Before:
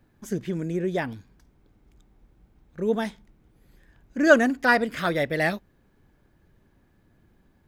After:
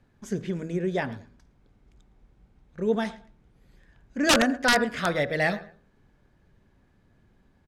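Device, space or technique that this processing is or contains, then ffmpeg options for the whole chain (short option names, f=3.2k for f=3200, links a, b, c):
overflowing digital effects unit: -filter_complex "[0:a]equalizer=f=320:t=o:w=0.23:g=-5.5,asplit=2[a][b];[b]adelay=112,lowpass=f=4.2k:p=1,volume=-19dB,asplit=2[c][d];[d]adelay=112,lowpass=f=4.2k:p=1,volume=0.22[e];[a][c][e]amix=inputs=3:normalize=0,bandreject=f=80.64:t=h:w=4,bandreject=f=161.28:t=h:w=4,bandreject=f=241.92:t=h:w=4,bandreject=f=322.56:t=h:w=4,bandreject=f=403.2:t=h:w=4,bandreject=f=483.84:t=h:w=4,bandreject=f=564.48:t=h:w=4,bandreject=f=645.12:t=h:w=4,bandreject=f=725.76:t=h:w=4,bandreject=f=806.4:t=h:w=4,bandreject=f=887.04:t=h:w=4,bandreject=f=967.68:t=h:w=4,bandreject=f=1.04832k:t=h:w=4,bandreject=f=1.12896k:t=h:w=4,bandreject=f=1.2096k:t=h:w=4,bandreject=f=1.29024k:t=h:w=4,bandreject=f=1.37088k:t=h:w=4,bandreject=f=1.45152k:t=h:w=4,bandreject=f=1.53216k:t=h:w=4,bandreject=f=1.6128k:t=h:w=4,bandreject=f=1.69344k:t=h:w=4,bandreject=f=1.77408k:t=h:w=4,aeval=exprs='(mod(3.55*val(0)+1,2)-1)/3.55':c=same,lowpass=8.2k"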